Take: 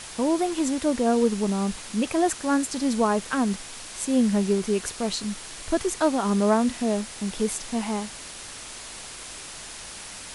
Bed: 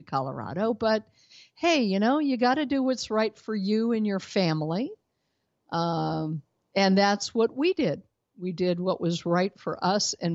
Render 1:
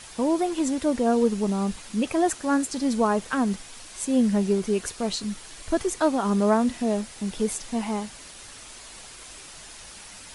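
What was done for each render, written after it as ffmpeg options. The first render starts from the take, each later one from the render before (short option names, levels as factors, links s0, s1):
-af "afftdn=nr=6:nf=-40"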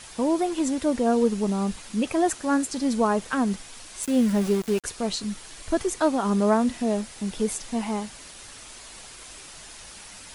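-filter_complex "[0:a]asettb=1/sr,asplit=3[s0][s1][s2];[s0]atrim=end=4.034[s3];[s1]atrim=start=4.03:end=4.84,asetpts=PTS-STARTPTS,afade=t=in:d=0.004:c=qsin,afade=t=out:st=0.806:d=0.004:c=qsin,aeval=exprs='val(0)*gte(abs(val(0)),0.0266)':c=same[s4];[s2]atrim=start=4.836[s5];[s3][s4]acrossfade=d=0.004:c1=hsin:c2=qsin[s6];[s6][s5]acrossfade=d=0.004:c1=qsin:c2=hsin"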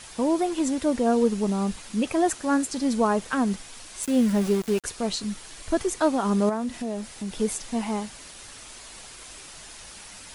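-filter_complex "[0:a]asettb=1/sr,asplit=3[s0][s1][s2];[s0]atrim=end=6.494[s3];[s1]atrim=start=6.49:end=7.38,asetpts=PTS-STARTPTS,afade=t=in:d=0.004:c=qsin,afade=t=out:st=0.886:d=0.004:c=qsin,acompressor=threshold=0.0316:ratio=2:attack=3.2:release=140:knee=1:detection=peak[s4];[s2]atrim=start=7.376[s5];[s3][s4]acrossfade=d=0.004:c1=hsin:c2=qsin[s6];[s6][s5]acrossfade=d=0.004:c1=qsin:c2=hsin"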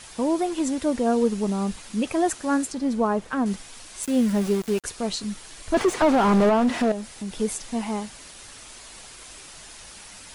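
-filter_complex "[0:a]asettb=1/sr,asplit=3[s0][s1][s2];[s0]atrim=end=2.724[s3];[s1]atrim=start=2.72:end=3.46,asetpts=PTS-STARTPTS,afade=t=in:d=0.004:c=qsin,afade=t=out:st=0.736:d=0.004:c=qsin,highshelf=f=2700:g=-10[s4];[s2]atrim=start=3.456[s5];[s3][s4]acrossfade=d=0.004:c1=hsin:c2=qsin[s6];[s6][s5]acrossfade=d=0.004:c1=qsin:c2=hsin,asettb=1/sr,asplit=3[s7][s8][s9];[s7]atrim=end=5.744[s10];[s8]atrim=start=5.74:end=6.92,asetpts=PTS-STARTPTS,afade=t=in:d=0.004:c=qsin,afade=t=out:st=1.176:d=0.004:c=qsin,asplit=2[s11][s12];[s12]highpass=f=720:p=1,volume=25.1,asoftclip=type=tanh:threshold=0.316[s13];[s11][s13]amix=inputs=2:normalize=0,lowpass=f=1100:p=1,volume=0.501[s14];[s9]atrim=start=6.916[s15];[s10][s14]acrossfade=d=0.004:c1=hsin:c2=qsin[s16];[s16][s15]acrossfade=d=0.004:c1=qsin:c2=hsin"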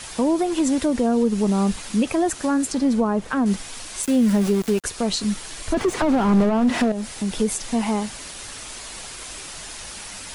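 -filter_complex "[0:a]acrossover=split=270[s0][s1];[s1]acompressor=threshold=0.0501:ratio=6[s2];[s0][s2]amix=inputs=2:normalize=0,asplit=2[s3][s4];[s4]alimiter=limit=0.0794:level=0:latency=1:release=154,volume=1.41[s5];[s3][s5]amix=inputs=2:normalize=0"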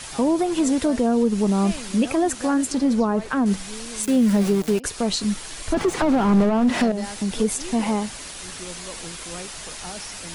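-filter_complex "[1:a]volume=0.211[s0];[0:a][s0]amix=inputs=2:normalize=0"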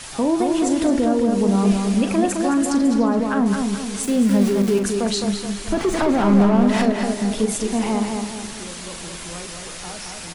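-filter_complex "[0:a]asplit=2[s0][s1];[s1]adelay=40,volume=0.316[s2];[s0][s2]amix=inputs=2:normalize=0,asplit=2[s3][s4];[s4]adelay=214,lowpass=f=3300:p=1,volume=0.631,asplit=2[s5][s6];[s6]adelay=214,lowpass=f=3300:p=1,volume=0.47,asplit=2[s7][s8];[s8]adelay=214,lowpass=f=3300:p=1,volume=0.47,asplit=2[s9][s10];[s10]adelay=214,lowpass=f=3300:p=1,volume=0.47,asplit=2[s11][s12];[s12]adelay=214,lowpass=f=3300:p=1,volume=0.47,asplit=2[s13][s14];[s14]adelay=214,lowpass=f=3300:p=1,volume=0.47[s15];[s5][s7][s9][s11][s13][s15]amix=inputs=6:normalize=0[s16];[s3][s16]amix=inputs=2:normalize=0"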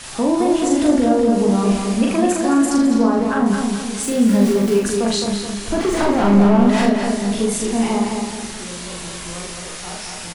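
-filter_complex "[0:a]asplit=2[s0][s1];[s1]adelay=17,volume=0.282[s2];[s0][s2]amix=inputs=2:normalize=0,asplit=2[s3][s4];[s4]aecho=0:1:40|79:0.501|0.398[s5];[s3][s5]amix=inputs=2:normalize=0"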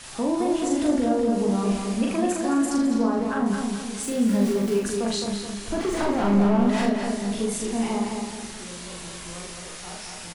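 -af "volume=0.447"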